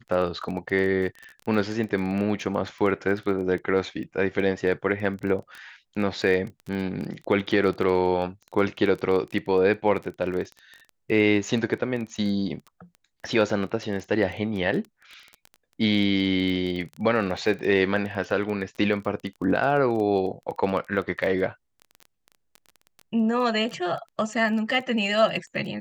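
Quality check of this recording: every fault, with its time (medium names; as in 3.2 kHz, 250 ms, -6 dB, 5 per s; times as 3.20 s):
crackle 16 per s -31 dBFS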